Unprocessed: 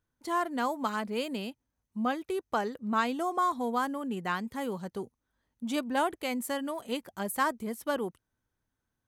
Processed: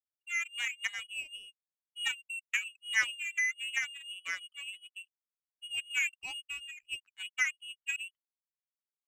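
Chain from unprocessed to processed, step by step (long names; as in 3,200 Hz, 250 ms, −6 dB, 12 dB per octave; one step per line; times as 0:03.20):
expanding power law on the bin magnitudes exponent 2.3
voice inversion scrambler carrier 3,100 Hz
power curve on the samples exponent 2
level +4 dB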